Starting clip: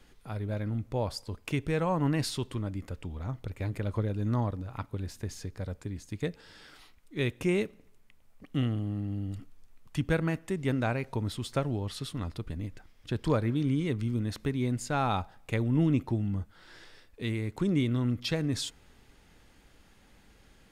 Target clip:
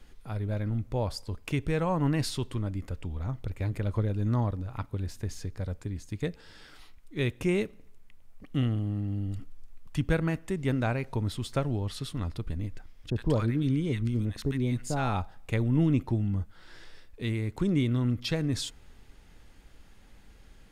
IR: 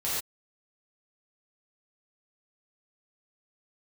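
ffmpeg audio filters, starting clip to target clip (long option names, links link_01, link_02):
-filter_complex "[0:a]lowshelf=frequency=63:gain=10.5,asettb=1/sr,asplit=3[link_01][link_02][link_03];[link_01]atrim=end=13.104[link_04];[link_02]atrim=start=13.1:end=15.16,asetpts=PTS-STARTPTS,afade=type=in:duration=0.004:curve=qsin,afade=type=out:start_time=2.056:duration=0.004:curve=qsin,acrossover=split=980[link_05][link_06];[link_06]adelay=60[link_07];[link_05][link_07]amix=inputs=2:normalize=0,atrim=end_sample=90846[link_08];[link_03]atrim=start=15.156[link_09];[link_04][link_08]acrossfade=duration=0.004:curve1=hsin:curve2=qsin[link_10];[link_10][link_09]acrossfade=duration=0.004:curve1=qsin:curve2=hsin"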